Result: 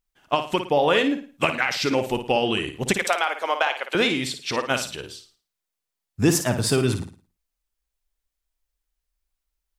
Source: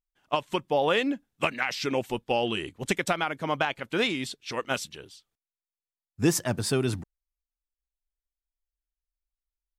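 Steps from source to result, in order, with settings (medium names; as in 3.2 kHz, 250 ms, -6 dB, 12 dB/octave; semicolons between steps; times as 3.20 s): 2.93–3.95 s: high-pass 460 Hz 24 dB/octave; in parallel at +2.5 dB: compression, threshold -35 dBFS, peak gain reduction 16.5 dB; on the sum: flutter echo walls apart 9.5 m, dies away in 0.38 s; trim +2 dB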